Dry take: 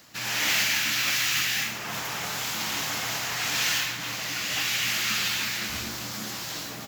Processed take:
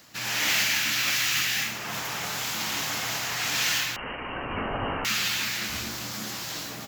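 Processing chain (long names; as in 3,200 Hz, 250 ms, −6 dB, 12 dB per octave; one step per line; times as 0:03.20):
0:03.96–0:05.05: voice inversion scrambler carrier 3,000 Hz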